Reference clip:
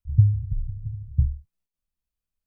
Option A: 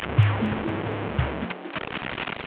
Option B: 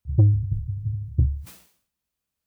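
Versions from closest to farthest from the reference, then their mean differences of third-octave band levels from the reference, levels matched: B, A; 2.0 dB, 19.0 dB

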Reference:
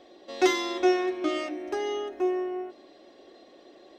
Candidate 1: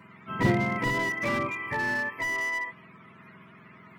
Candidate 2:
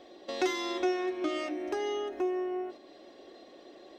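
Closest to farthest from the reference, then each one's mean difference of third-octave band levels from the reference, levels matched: 2, 1; 3.0 dB, 10.0 dB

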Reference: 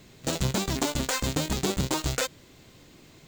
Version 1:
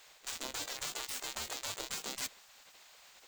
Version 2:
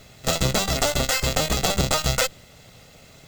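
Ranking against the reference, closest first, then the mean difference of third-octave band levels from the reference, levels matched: 2, 1; 3.0 dB, 9.5 dB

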